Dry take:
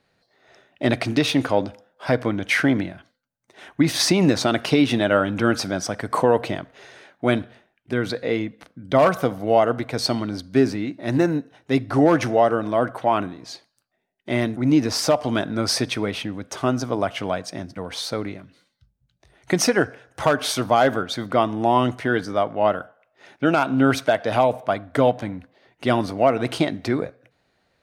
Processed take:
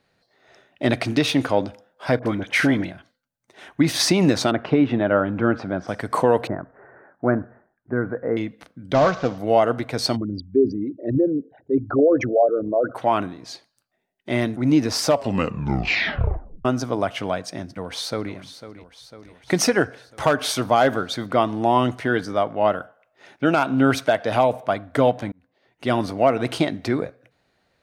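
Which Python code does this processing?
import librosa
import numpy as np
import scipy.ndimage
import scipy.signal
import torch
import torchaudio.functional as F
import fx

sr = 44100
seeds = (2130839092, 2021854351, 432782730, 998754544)

y = fx.dispersion(x, sr, late='highs', ms=44.0, hz=1300.0, at=(2.19, 2.91))
y = fx.lowpass(y, sr, hz=1600.0, slope=12, at=(4.5, 5.87), fade=0.02)
y = fx.steep_lowpass(y, sr, hz=1700.0, slope=48, at=(6.47, 8.37))
y = fx.cvsd(y, sr, bps=32000, at=(8.94, 9.38))
y = fx.envelope_sharpen(y, sr, power=3.0, at=(10.15, 12.94), fade=0.02)
y = fx.echo_throw(y, sr, start_s=17.66, length_s=0.67, ms=500, feedback_pct=65, wet_db=-13.0)
y = fx.edit(y, sr, fx.tape_stop(start_s=15.1, length_s=1.55),
    fx.fade_in_span(start_s=25.32, length_s=0.71), tone=tone)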